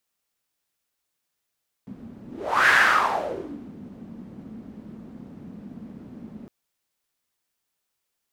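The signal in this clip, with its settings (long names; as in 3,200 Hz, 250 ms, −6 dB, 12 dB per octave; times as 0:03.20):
pass-by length 4.61 s, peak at 0:00.83, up 0.45 s, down 1.07 s, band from 220 Hz, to 1,700 Hz, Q 4.7, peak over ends 24 dB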